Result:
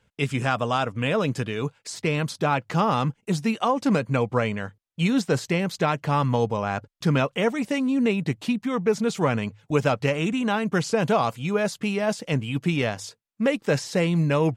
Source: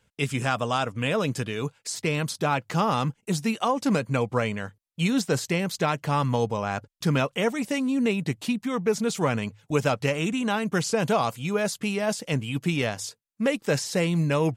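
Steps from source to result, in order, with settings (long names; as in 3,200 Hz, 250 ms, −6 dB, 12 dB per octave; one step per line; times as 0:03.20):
high-shelf EQ 6,000 Hz −10 dB
level +2 dB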